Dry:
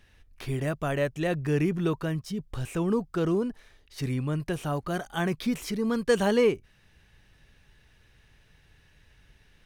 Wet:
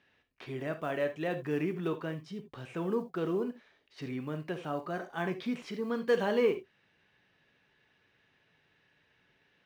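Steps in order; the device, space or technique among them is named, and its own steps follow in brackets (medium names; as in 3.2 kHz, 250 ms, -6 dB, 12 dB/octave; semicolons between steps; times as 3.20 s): early digital voice recorder (band-pass 210–3600 Hz; block-companded coder 7-bit); 4.78–5.20 s: band-stop 3.2 kHz, Q 5.5; gated-style reverb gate 100 ms flat, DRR 7.5 dB; trim -5 dB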